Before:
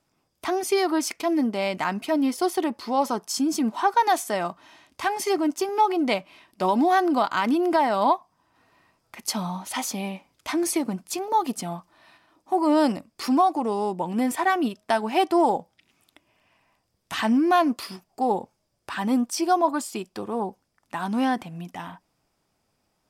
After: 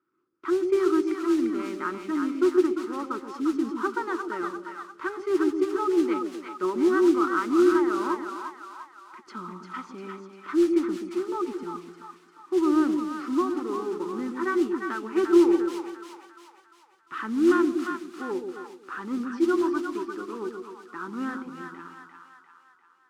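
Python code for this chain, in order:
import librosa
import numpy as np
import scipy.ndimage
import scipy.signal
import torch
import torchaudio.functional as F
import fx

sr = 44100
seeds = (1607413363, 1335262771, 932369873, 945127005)

y = fx.double_bandpass(x, sr, hz=680.0, octaves=1.9)
y = fx.mod_noise(y, sr, seeds[0], snr_db=19)
y = fx.air_absorb(y, sr, metres=72.0)
y = fx.echo_split(y, sr, split_hz=710.0, low_ms=128, high_ms=348, feedback_pct=52, wet_db=-5)
y = y * 10.0 ** (5.5 / 20.0)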